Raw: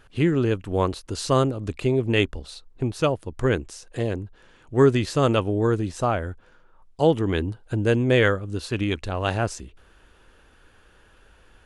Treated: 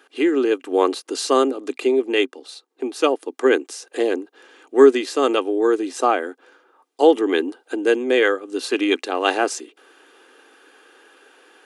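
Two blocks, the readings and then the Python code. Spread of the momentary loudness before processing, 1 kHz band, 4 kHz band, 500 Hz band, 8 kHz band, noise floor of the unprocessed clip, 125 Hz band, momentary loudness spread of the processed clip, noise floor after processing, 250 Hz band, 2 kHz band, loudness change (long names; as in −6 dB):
11 LU, +5.5 dB, +4.5 dB, +5.5 dB, +5.5 dB, −56 dBFS, below −30 dB, 10 LU, −65 dBFS, +3.0 dB, +4.0 dB, +3.5 dB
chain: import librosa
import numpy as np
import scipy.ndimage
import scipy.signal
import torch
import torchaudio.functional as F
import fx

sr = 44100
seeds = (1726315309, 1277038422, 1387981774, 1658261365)

y = scipy.signal.sosfilt(scipy.signal.cheby1(5, 1.0, 260.0, 'highpass', fs=sr, output='sos'), x)
y = y + 0.39 * np.pad(y, (int(2.5 * sr / 1000.0), 0))[:len(y)]
y = fx.rider(y, sr, range_db=3, speed_s=0.5)
y = y * 10.0 ** (4.0 / 20.0)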